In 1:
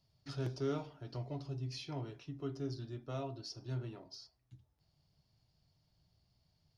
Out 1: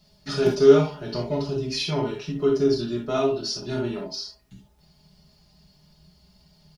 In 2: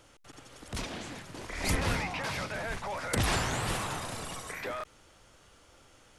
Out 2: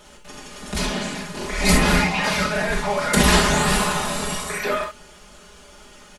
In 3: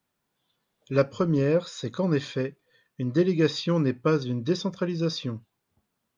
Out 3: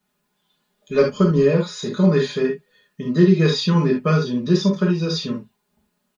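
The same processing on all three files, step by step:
comb 4.8 ms, depth 89%; non-linear reverb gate 90 ms flat, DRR 0.5 dB; normalise peaks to -3 dBFS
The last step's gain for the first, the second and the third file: +13.5, +8.0, +1.5 dB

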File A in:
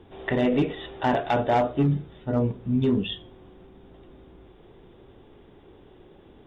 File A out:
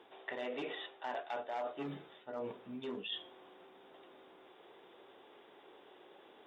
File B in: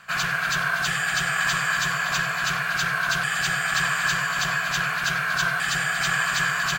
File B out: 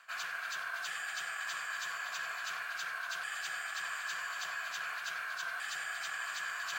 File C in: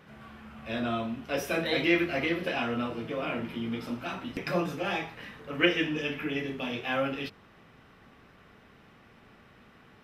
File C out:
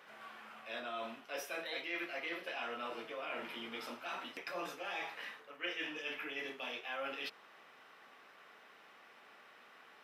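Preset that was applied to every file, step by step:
HPF 600 Hz 12 dB/oct; reverse; compressor 4:1, threshold -40 dBFS; reverse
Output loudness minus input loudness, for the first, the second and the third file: -17.5, -15.0, -11.5 LU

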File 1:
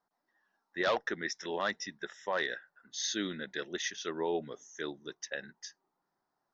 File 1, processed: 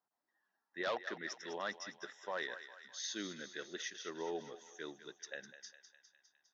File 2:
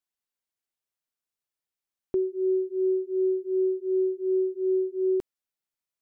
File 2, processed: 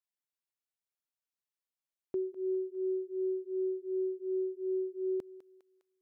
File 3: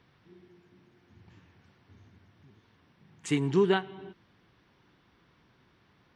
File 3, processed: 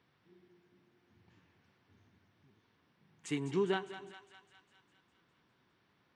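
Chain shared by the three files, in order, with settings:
HPF 140 Hz 6 dB/oct; on a send: thinning echo 0.203 s, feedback 65%, high-pass 710 Hz, level -11 dB; on the sum: gain -7.5 dB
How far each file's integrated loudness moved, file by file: -7.5, -8.5, -8.0 LU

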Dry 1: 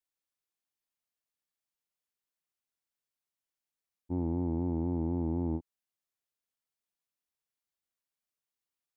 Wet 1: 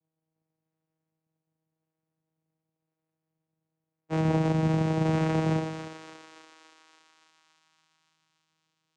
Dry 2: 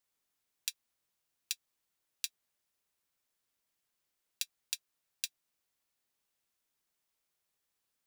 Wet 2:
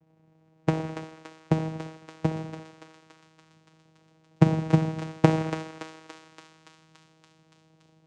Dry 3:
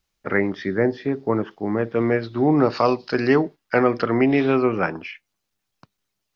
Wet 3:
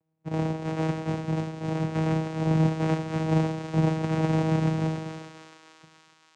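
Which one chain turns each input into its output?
spectral whitening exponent 0.1; in parallel at +1 dB: compressor, threshold -27 dBFS; on the sum: decimation with a swept rate 34×, swing 60% 0.91 Hz; on a send: thinning echo 0.285 s, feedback 75%, high-pass 1000 Hz, level -6 dB; on the sum: non-linear reverb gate 0.39 s falling, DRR 1.5 dB; vocoder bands 4, saw 159 Hz; match loudness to -27 LUFS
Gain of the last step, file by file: -1.0, +14.5, -9.0 dB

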